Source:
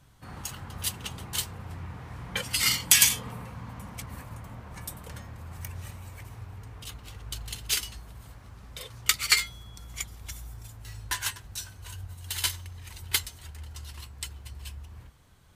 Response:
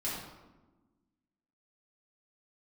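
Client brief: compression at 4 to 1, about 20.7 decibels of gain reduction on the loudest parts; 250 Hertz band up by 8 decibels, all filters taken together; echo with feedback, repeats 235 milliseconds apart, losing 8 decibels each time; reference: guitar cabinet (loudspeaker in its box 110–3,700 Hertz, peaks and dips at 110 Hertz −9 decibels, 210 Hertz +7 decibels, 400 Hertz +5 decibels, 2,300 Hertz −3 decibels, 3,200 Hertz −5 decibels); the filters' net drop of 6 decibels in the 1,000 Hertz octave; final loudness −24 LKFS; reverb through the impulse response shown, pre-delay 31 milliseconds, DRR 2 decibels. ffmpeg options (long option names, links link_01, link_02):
-filter_complex "[0:a]equalizer=frequency=250:width_type=o:gain=6.5,equalizer=frequency=1000:width_type=o:gain=-8,acompressor=threshold=-41dB:ratio=4,aecho=1:1:235|470|705|940|1175:0.398|0.159|0.0637|0.0255|0.0102,asplit=2[link_01][link_02];[1:a]atrim=start_sample=2205,adelay=31[link_03];[link_02][link_03]afir=irnorm=-1:irlink=0,volume=-6.5dB[link_04];[link_01][link_04]amix=inputs=2:normalize=0,highpass=110,equalizer=frequency=110:width_type=q:width=4:gain=-9,equalizer=frequency=210:width_type=q:width=4:gain=7,equalizer=frequency=400:width_type=q:width=4:gain=5,equalizer=frequency=2300:width_type=q:width=4:gain=-3,equalizer=frequency=3200:width_type=q:width=4:gain=-5,lowpass=frequency=3700:width=0.5412,lowpass=frequency=3700:width=1.3066,volume=20.5dB"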